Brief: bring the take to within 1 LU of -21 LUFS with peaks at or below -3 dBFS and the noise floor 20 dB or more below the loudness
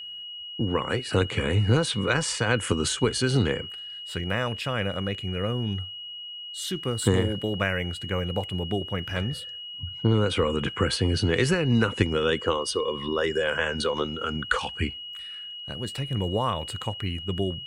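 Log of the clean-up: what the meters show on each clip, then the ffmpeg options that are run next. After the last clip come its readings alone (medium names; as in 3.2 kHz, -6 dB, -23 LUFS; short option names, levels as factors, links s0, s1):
steady tone 2.9 kHz; tone level -36 dBFS; loudness -27.0 LUFS; peak level -7.0 dBFS; loudness target -21.0 LUFS
-> -af "bandreject=f=2900:w=30"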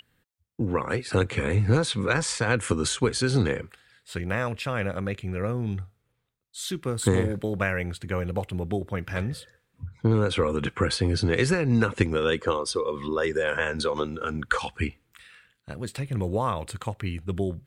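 steady tone not found; loudness -27.0 LUFS; peak level -6.5 dBFS; loudness target -21.0 LUFS
-> -af "volume=2,alimiter=limit=0.708:level=0:latency=1"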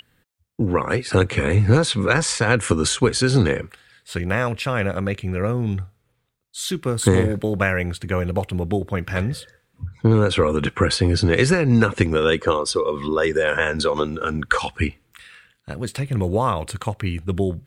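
loudness -21.0 LUFS; peak level -3.0 dBFS; noise floor -68 dBFS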